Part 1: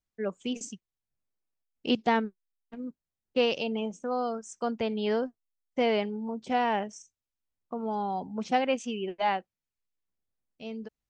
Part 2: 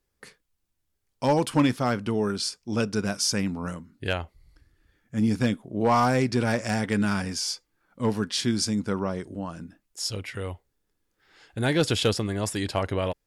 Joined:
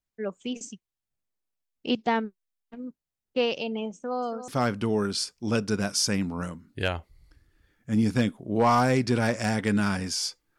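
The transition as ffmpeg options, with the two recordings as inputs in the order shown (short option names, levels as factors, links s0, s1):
-filter_complex "[0:a]asettb=1/sr,asplit=3[s0][s1][s2];[s0]atrim=end=3.944[s3];[s1]atrim=start=3.94:end=4.48,asetpts=PTS-STARTPTS,afade=t=in:d=0.004:c=qsin,afade=t=out:st=0.536:d=0.004:c=qsin,aecho=1:1:282:0.266,atrim=end_sample=23814[s4];[s2]atrim=start=4.476[s5];[s3][s4]acrossfade=d=0.004:c1=hsin:c2=qsin[s6];[s6][s5]acrossfade=d=0.004:c1=qsin:c2=hsin,apad=whole_dur=10.58,atrim=end=10.58,atrim=end=4.482[s7];[1:a]atrim=start=1.728:end=7.83[s8];[s7][s8]acrossfade=d=0.004:c1=hsin:c2=hsin"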